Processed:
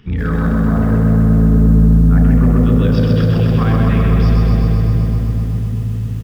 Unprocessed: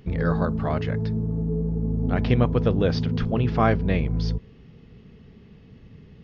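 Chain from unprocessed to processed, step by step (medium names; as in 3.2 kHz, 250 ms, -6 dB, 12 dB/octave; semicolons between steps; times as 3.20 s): 0.58–2.60 s: low-pass 1.7 kHz 24 dB/octave; delay 517 ms -21.5 dB; reverberation RT60 3.5 s, pre-delay 31 ms, DRR 3 dB; loudness maximiser +9.5 dB; bit-crushed delay 128 ms, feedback 80%, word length 6-bit, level -4 dB; trim -10.5 dB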